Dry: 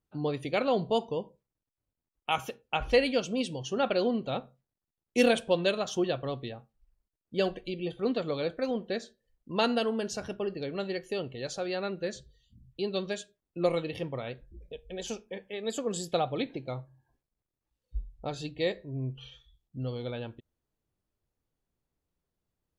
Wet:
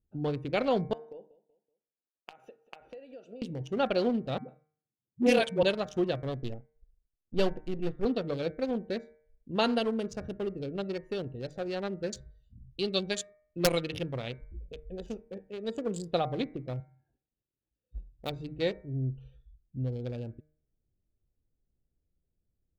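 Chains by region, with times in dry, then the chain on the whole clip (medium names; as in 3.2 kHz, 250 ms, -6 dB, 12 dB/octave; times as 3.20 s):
0.93–3.42 s: high-pass 560 Hz + compression 12:1, threshold -37 dBFS + feedback delay 189 ms, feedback 38%, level -18.5 dB
4.38–5.63 s: high-pass 110 Hz 24 dB/octave + phase dispersion highs, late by 105 ms, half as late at 300 Hz + loudspeaker Doppler distortion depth 0.11 ms
6.42–8.05 s: partial rectifier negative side -7 dB + low-pass 9.3 kHz + waveshaping leveller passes 1
12.12–14.87 s: treble shelf 2.3 kHz +11.5 dB + integer overflow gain 15 dB
16.80–18.30 s: frequency weighting D + short-mantissa float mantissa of 2-bit
whole clip: local Wiener filter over 41 samples; bass shelf 90 Hz +9.5 dB; de-hum 153 Hz, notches 15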